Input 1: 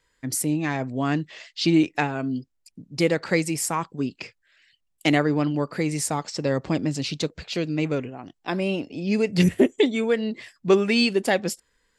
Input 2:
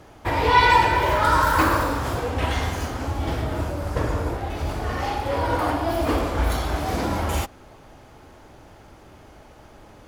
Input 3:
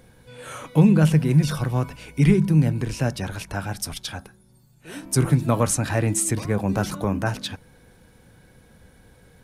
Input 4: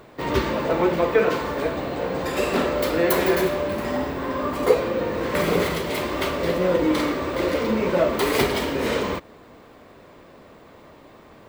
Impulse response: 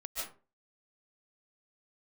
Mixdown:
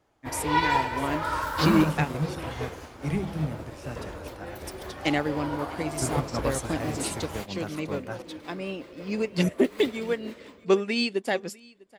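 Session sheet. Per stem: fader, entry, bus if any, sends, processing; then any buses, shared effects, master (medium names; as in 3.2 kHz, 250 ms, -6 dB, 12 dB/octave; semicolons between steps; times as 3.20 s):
-2.0 dB, 0.00 s, muted 2.08–4.55 s, no send, echo send -17 dB, none
-6.0 dB, 0.00 s, no send, no echo send, vibrato 6.5 Hz 25 cents
-6.5 dB, 0.85 s, no send, no echo send, none
-11.5 dB, 1.45 s, no send, no echo send, rotary cabinet horn 5.5 Hz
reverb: none
echo: feedback delay 649 ms, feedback 32%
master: bass shelf 160 Hz -5 dB; upward expansion 1.5:1, over -45 dBFS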